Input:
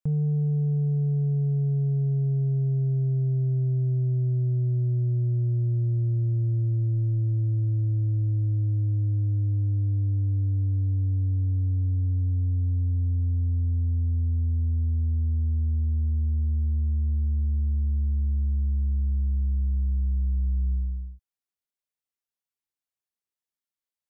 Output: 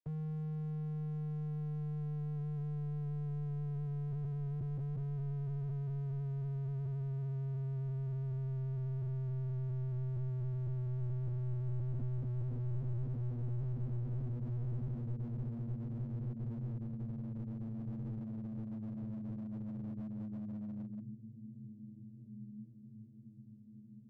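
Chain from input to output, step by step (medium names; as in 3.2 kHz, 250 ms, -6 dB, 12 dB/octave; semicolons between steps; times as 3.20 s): vocoder on a note that slides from D#3, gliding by -8 st; compression 6:1, threshold -25 dBFS, peak gain reduction 5 dB; on a send: echo that smears into a reverb 1724 ms, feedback 56%, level -11 dB; on the sum: slew-rate limiter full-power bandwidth 1 Hz; trim +6 dB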